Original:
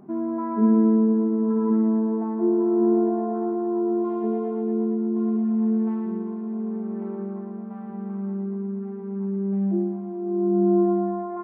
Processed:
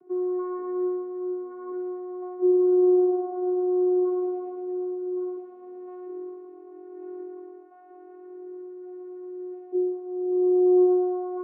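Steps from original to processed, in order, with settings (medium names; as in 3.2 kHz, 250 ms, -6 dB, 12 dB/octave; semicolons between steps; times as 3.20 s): vocoder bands 16, saw 363 Hz; trim -2 dB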